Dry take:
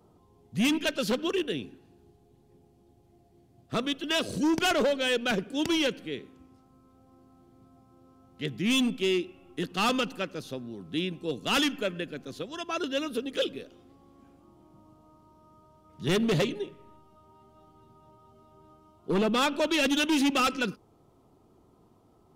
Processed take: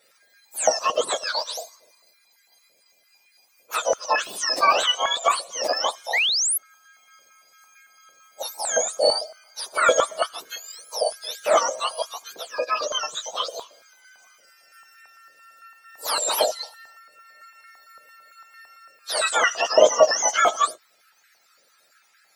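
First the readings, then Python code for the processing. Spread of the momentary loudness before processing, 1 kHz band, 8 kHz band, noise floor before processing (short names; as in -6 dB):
14 LU, +10.5 dB, +15.0 dB, -62 dBFS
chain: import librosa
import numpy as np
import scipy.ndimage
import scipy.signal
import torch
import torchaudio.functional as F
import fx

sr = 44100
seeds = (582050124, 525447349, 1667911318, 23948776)

y = fx.octave_mirror(x, sr, pivot_hz=1300.0)
y = fx.spec_paint(y, sr, seeds[0], shape='rise', start_s=6.13, length_s=0.45, low_hz=1800.0, high_hz=12000.0, level_db=-28.0)
y = fx.filter_held_highpass(y, sr, hz=8.9, low_hz=550.0, high_hz=1600.0)
y = y * librosa.db_to_amplitude(6.0)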